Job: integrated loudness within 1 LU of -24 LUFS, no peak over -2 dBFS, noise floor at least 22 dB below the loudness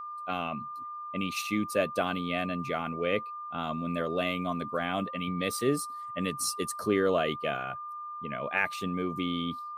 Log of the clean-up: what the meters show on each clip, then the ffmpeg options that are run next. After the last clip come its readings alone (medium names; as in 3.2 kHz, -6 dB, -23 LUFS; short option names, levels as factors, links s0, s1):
steady tone 1.2 kHz; tone level -37 dBFS; loudness -31.5 LUFS; peak level -13.0 dBFS; loudness target -24.0 LUFS
-> -af "bandreject=f=1200:w=30"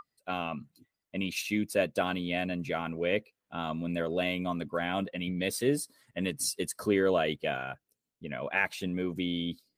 steady tone not found; loudness -32.0 LUFS; peak level -13.5 dBFS; loudness target -24.0 LUFS
-> -af "volume=2.51"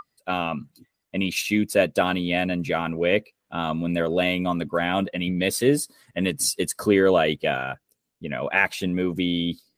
loudness -24.0 LUFS; peak level -5.5 dBFS; noise floor -79 dBFS